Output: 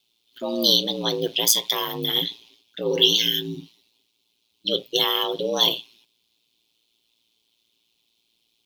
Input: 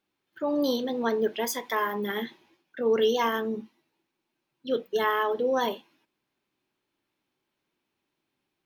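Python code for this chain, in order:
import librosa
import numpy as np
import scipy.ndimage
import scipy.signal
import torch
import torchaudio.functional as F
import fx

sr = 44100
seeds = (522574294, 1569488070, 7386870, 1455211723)

y = fx.high_shelf_res(x, sr, hz=2400.0, db=12.5, q=3.0)
y = y * np.sin(2.0 * np.pi * 57.0 * np.arange(len(y)) / sr)
y = fx.spec_repair(y, sr, seeds[0], start_s=2.93, length_s=0.66, low_hz=390.0, high_hz=1500.0, source='both')
y = y * librosa.db_to_amplitude(3.5)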